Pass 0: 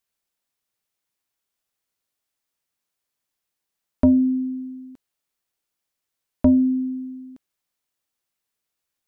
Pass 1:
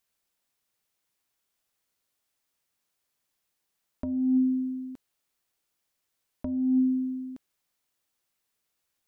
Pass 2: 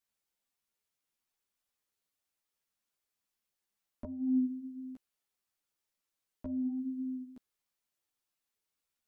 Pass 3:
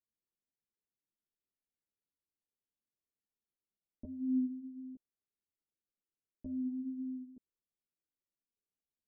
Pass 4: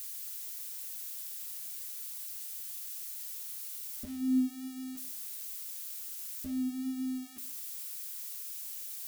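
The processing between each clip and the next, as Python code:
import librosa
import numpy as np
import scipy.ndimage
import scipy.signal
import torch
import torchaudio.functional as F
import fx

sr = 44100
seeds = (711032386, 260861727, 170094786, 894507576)

y1 = fx.over_compress(x, sr, threshold_db=-23.0, ratio=-1.0)
y1 = F.gain(torch.from_numpy(y1), -2.0).numpy()
y2 = fx.ensemble(y1, sr)
y2 = F.gain(torch.from_numpy(y2), -4.5).numpy()
y3 = fx.ladder_lowpass(y2, sr, hz=540.0, resonance_pct=20)
y3 = F.gain(torch.from_numpy(y3), 1.0).numpy()
y4 = y3 + 0.5 * 10.0 ** (-35.5 / 20.0) * np.diff(np.sign(y3), prepend=np.sign(y3[:1]))
y4 = fx.rev_double_slope(y4, sr, seeds[0], early_s=0.69, late_s=2.0, knee_db=-26, drr_db=12.0)
y4 = F.gain(torch.from_numpy(y4), 2.5).numpy()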